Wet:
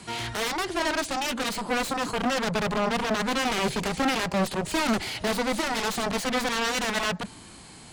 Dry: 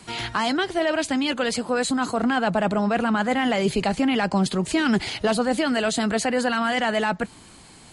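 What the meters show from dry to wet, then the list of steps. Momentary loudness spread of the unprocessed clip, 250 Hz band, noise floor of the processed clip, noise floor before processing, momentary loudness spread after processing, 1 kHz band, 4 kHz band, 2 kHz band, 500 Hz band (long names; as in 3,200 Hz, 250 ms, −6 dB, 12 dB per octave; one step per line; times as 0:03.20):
2 LU, −7.0 dB, −47 dBFS, −48 dBFS, 4 LU, −3.0 dB, −0.5 dB, −2.5 dB, −5.0 dB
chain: harmonic generator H 7 −9 dB, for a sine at −10 dBFS
hard clipping −17.5 dBFS, distortion −10 dB
harmonic and percussive parts rebalanced percussive −6 dB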